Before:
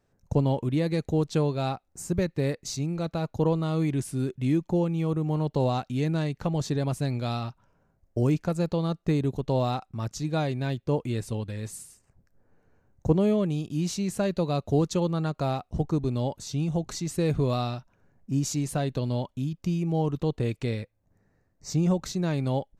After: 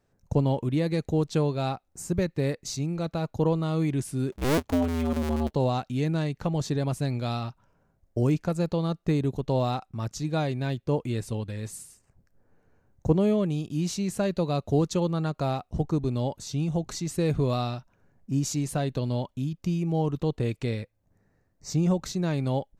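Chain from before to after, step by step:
0:04.32–0:05.51: sub-harmonics by changed cycles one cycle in 2, inverted

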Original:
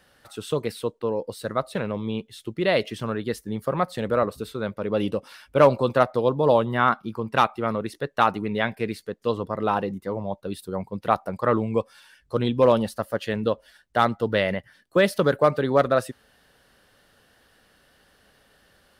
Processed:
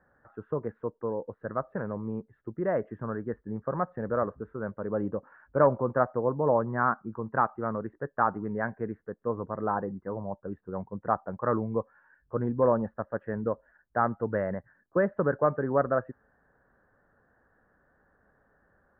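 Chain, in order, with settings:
Chebyshev low-pass filter 1,700 Hz, order 5
level −5 dB

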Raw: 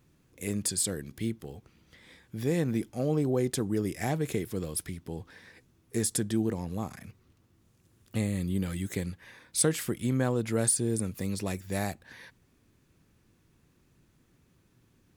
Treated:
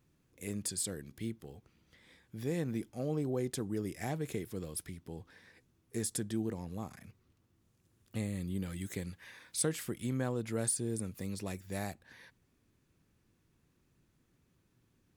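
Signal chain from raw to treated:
0:08.81–0:10.31: one half of a high-frequency compander encoder only
level −7 dB

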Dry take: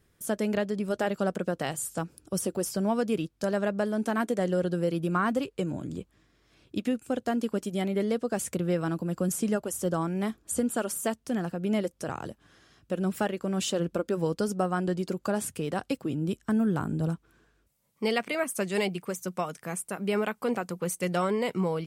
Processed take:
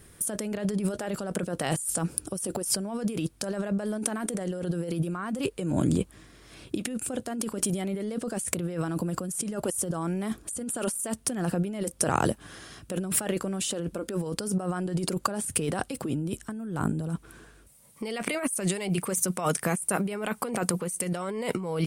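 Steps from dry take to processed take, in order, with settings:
parametric band 9,400 Hz +12 dB 0.41 octaves
compressor whose output falls as the input rises −36 dBFS, ratio −1
level +6 dB

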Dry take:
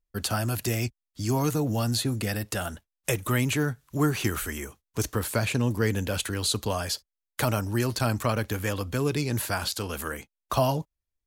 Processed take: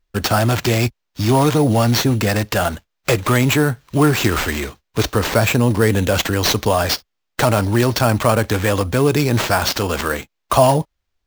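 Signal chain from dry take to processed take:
dynamic equaliser 710 Hz, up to +5 dB, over −38 dBFS, Q 0.81
in parallel at +2 dB: brickwall limiter −20.5 dBFS, peak gain reduction 12 dB
on the sum: sample-rate reduction 10,000 Hz, jitter 0%
level +4.5 dB

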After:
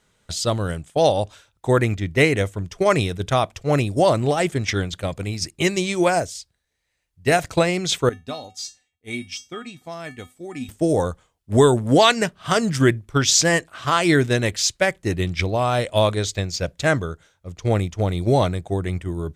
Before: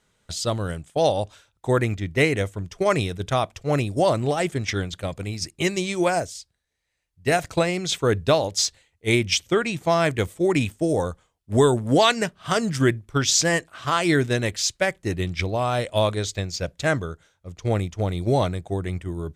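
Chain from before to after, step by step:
0:08.09–0:10.69: tuned comb filter 250 Hz, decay 0.23 s, harmonics odd, mix 90%
level +3 dB

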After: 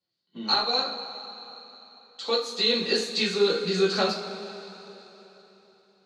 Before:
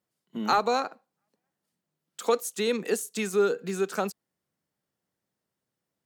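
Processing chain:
low-pass with resonance 4,300 Hz, resonance Q 10
speech leveller within 4 dB 0.5 s
coupled-rooms reverb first 0.32 s, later 3.6 s, from −18 dB, DRR −6.5 dB
level −7 dB

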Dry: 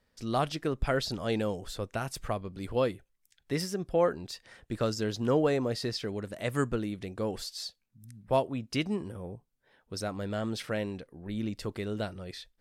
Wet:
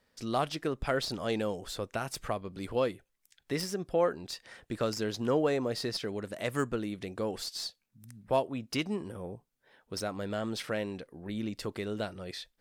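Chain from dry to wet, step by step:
stylus tracing distortion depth 0.023 ms
low-shelf EQ 130 Hz −9 dB
in parallel at −2.5 dB: downward compressor, threshold −39 dBFS, peak gain reduction 16.5 dB
on the sum: level −2 dB

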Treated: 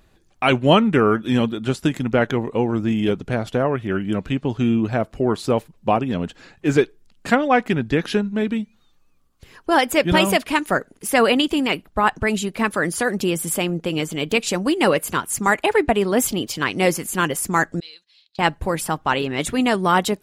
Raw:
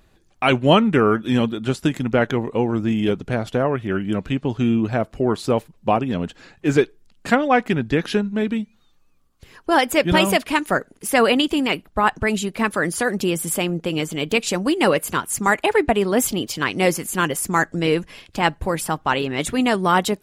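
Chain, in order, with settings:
0:17.80–0:18.39: resonant band-pass 4,100 Hz, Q 9.2

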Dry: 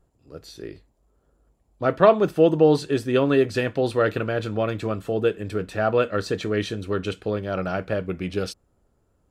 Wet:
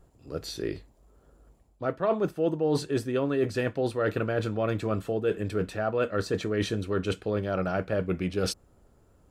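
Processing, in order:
dynamic equaliser 3,300 Hz, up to −4 dB, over −41 dBFS, Q 1
reversed playback
downward compressor 5 to 1, threshold −31 dBFS, peak gain reduction 18.5 dB
reversed playback
level +6 dB

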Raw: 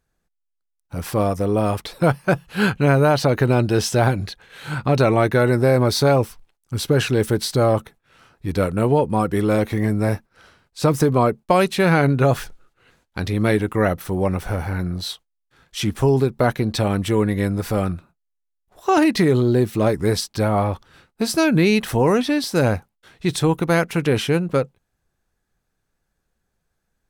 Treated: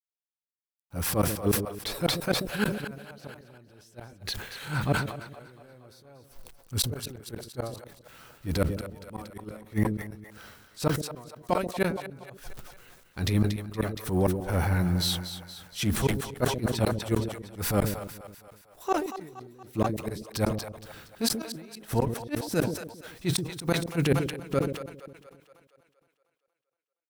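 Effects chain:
bit reduction 10 bits
transient designer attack −12 dB, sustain +1 dB
high-shelf EQ 11,000 Hz +9.5 dB
gate with flip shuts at −13 dBFS, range −36 dB
echo with a time of its own for lows and highs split 510 Hz, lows 135 ms, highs 234 ms, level −11 dB
level that may fall only so fast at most 75 dB per second

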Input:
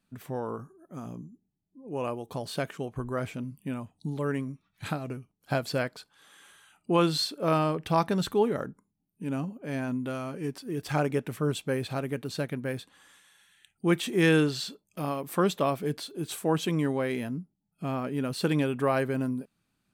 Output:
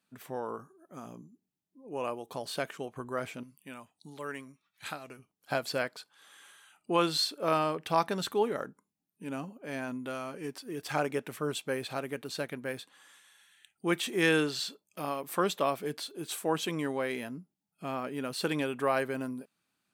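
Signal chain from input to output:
high-pass filter 450 Hz 6 dB per octave, from 0:03.43 1,300 Hz, from 0:05.19 490 Hz

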